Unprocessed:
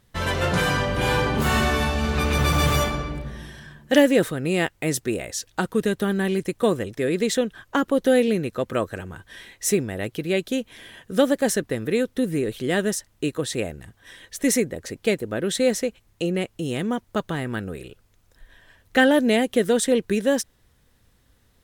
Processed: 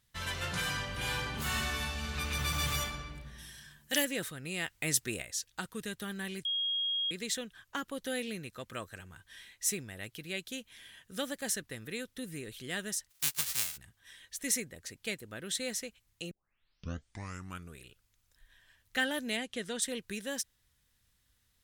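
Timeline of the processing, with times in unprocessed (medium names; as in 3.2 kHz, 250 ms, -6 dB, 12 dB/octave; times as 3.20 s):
3.38–4.05 s: treble shelf 5.5 kHz +11.5 dB
4.68–5.22 s: gain +5.5 dB
6.45–7.11 s: bleep 3.27 kHz -22 dBFS
13.09–13.76 s: formants flattened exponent 0.1
16.31 s: tape start 1.49 s
19.37–19.82 s: low-pass 7.5 kHz
whole clip: amplifier tone stack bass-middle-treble 5-5-5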